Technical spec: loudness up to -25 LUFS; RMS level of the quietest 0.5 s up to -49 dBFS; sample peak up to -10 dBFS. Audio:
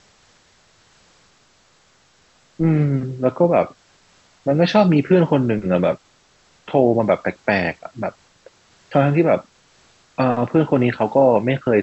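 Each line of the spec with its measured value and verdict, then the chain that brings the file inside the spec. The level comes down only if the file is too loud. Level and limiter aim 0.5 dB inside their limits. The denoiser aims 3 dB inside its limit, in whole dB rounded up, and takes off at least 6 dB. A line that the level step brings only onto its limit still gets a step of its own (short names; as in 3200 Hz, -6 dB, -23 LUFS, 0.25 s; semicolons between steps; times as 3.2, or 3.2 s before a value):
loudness -18.5 LUFS: fail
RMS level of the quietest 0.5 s -57 dBFS: OK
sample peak -2.5 dBFS: fail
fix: gain -7 dB; limiter -10.5 dBFS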